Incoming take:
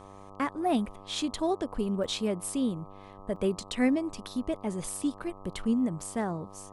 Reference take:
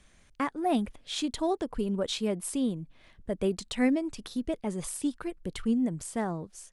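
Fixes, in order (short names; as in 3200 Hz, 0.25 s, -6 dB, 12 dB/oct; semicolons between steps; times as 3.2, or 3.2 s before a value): de-hum 98.1 Hz, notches 13; interpolate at 2.04/3.36, 3.1 ms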